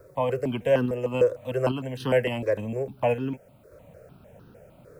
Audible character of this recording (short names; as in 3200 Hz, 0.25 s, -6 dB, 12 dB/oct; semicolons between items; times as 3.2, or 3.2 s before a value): random-step tremolo; a quantiser's noise floor 12-bit, dither triangular; notches that jump at a steady rate 6.6 Hz 810–2200 Hz